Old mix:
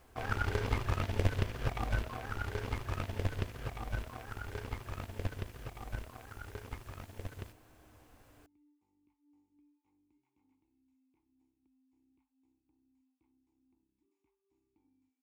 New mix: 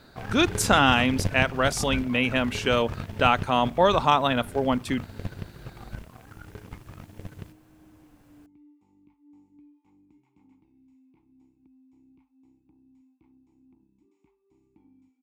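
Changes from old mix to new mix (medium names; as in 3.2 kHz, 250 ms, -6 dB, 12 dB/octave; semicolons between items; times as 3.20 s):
speech: unmuted; second sound +12.0 dB; master: add peaking EQ 170 Hz +13.5 dB 0.68 oct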